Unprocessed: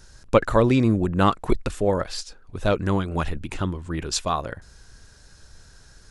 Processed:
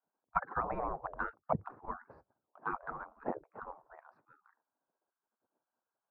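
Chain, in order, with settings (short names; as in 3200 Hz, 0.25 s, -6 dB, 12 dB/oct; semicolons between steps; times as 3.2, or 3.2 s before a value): inverse Chebyshev low-pass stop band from 3000 Hz, stop band 60 dB; spectral gate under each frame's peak -30 dB weak; expander -49 dBFS; gain +15 dB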